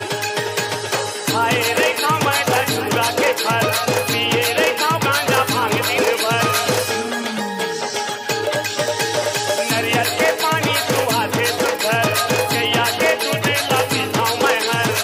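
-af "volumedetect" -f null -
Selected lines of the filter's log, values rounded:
mean_volume: -18.6 dB
max_volume: -3.8 dB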